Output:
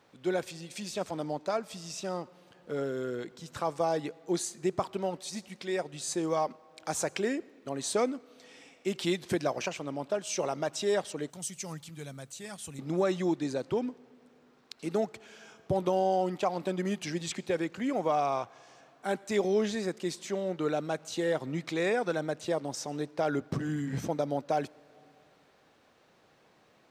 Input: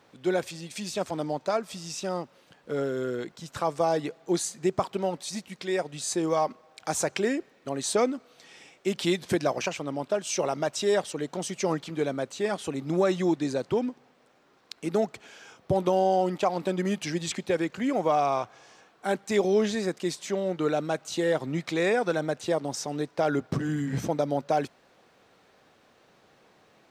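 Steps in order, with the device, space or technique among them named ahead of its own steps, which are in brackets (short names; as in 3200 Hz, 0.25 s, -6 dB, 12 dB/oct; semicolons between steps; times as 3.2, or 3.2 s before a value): compressed reverb return (on a send at -9.5 dB: reverb RT60 1.2 s, pre-delay 77 ms + compressor 5:1, threshold -42 dBFS, peak gain reduction 21 dB); 11.3–12.79 on the sum: EQ curve 140 Hz 0 dB, 350 Hz -16 dB, 4900 Hz -2 dB, 9700 Hz +8 dB; gain -4 dB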